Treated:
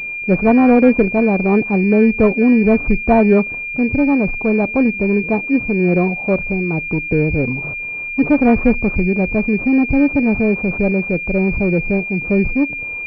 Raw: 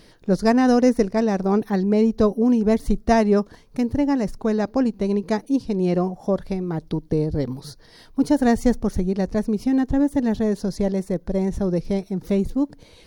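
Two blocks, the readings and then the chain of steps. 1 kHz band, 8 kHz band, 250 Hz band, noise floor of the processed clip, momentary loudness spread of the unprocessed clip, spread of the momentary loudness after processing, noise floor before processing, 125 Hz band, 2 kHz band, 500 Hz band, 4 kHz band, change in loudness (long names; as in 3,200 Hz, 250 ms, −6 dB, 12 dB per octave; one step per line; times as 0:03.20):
+4.0 dB, below −20 dB, +5.5 dB, −26 dBFS, 8 LU, 7 LU, −50 dBFS, +6.0 dB, +16.5 dB, +5.0 dB, can't be measured, +6.0 dB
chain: transient designer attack −2 dB, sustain +3 dB
switching amplifier with a slow clock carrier 2,400 Hz
level +6 dB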